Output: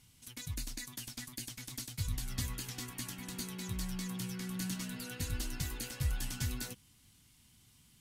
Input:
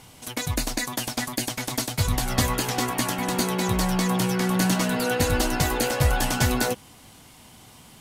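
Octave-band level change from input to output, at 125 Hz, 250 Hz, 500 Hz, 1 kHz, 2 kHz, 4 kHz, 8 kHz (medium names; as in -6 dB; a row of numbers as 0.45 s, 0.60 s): -13.5 dB, -17.0 dB, -26.0 dB, -26.0 dB, -19.0 dB, -15.0 dB, -13.5 dB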